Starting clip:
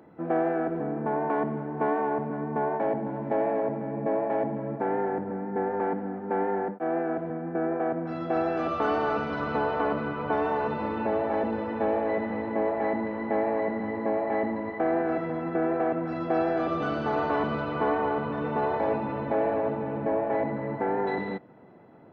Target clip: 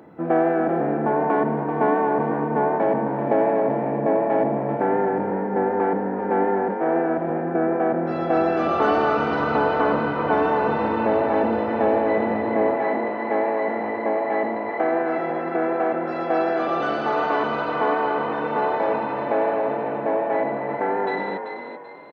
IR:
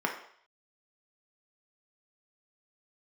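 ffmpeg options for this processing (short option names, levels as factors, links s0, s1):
-filter_complex "[0:a]asetnsamples=n=441:p=0,asendcmd='12.76 highpass f 470',highpass=f=75:p=1,asplit=5[s0][s1][s2][s3][s4];[s1]adelay=386,afreqshift=43,volume=0.398[s5];[s2]adelay=772,afreqshift=86,volume=0.143[s6];[s3]adelay=1158,afreqshift=129,volume=0.0519[s7];[s4]adelay=1544,afreqshift=172,volume=0.0186[s8];[s0][s5][s6][s7][s8]amix=inputs=5:normalize=0,volume=2.11"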